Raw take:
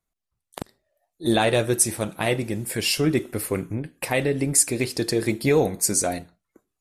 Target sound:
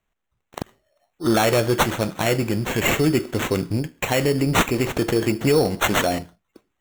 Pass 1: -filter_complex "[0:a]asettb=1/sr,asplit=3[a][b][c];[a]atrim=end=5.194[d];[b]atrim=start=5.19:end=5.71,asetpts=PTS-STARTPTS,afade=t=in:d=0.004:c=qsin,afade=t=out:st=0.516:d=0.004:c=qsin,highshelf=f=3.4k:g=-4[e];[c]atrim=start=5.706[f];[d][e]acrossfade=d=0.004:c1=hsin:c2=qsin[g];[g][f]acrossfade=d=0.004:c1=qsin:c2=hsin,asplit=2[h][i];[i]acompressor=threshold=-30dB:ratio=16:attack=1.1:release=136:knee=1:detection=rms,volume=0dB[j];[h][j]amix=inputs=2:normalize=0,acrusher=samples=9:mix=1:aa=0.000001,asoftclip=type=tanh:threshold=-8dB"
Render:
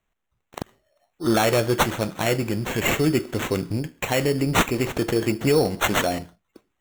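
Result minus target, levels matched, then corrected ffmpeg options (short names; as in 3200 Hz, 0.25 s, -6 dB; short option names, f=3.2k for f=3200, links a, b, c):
compressor: peak gain reduction +8.5 dB
-filter_complex "[0:a]asettb=1/sr,asplit=3[a][b][c];[a]atrim=end=5.194[d];[b]atrim=start=5.19:end=5.71,asetpts=PTS-STARTPTS,afade=t=in:d=0.004:c=qsin,afade=t=out:st=0.516:d=0.004:c=qsin,highshelf=f=3.4k:g=-4[e];[c]atrim=start=5.706[f];[d][e]acrossfade=d=0.004:c1=hsin:c2=qsin[g];[g][f]acrossfade=d=0.004:c1=qsin:c2=hsin,asplit=2[h][i];[i]acompressor=threshold=-21dB:ratio=16:attack=1.1:release=136:knee=1:detection=rms,volume=0dB[j];[h][j]amix=inputs=2:normalize=0,acrusher=samples=9:mix=1:aa=0.000001,asoftclip=type=tanh:threshold=-8dB"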